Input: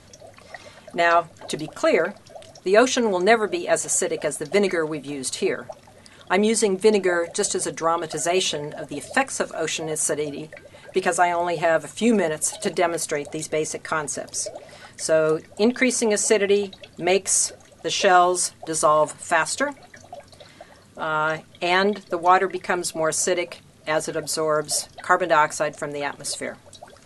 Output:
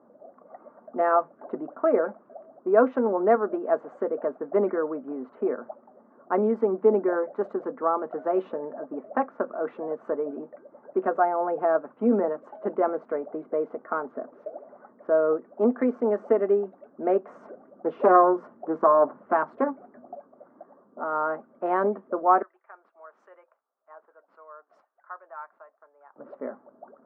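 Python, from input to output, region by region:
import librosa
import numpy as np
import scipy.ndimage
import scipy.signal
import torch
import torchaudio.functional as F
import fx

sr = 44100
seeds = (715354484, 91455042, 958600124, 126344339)

y = fx.chain(x, sr, fx.low_shelf(hz=360.0, db=8.0),
    fx.doppler_dist(depth_ms=0.38), at=(17.29, 20.15))
y = fx.chain(y, sr, fx.highpass(hz=610.0, slope=12),
    fx.differentiator(), at=(22.42, 26.16))
y = fx.wiener(y, sr, points=9)
y = fx.env_lowpass(y, sr, base_hz=1100.0, full_db=-19.0)
y = scipy.signal.sosfilt(scipy.signal.cheby1(3, 1.0, [230.0, 1300.0], 'bandpass', fs=sr, output='sos'), y)
y = y * librosa.db_to_amplitude(-2.0)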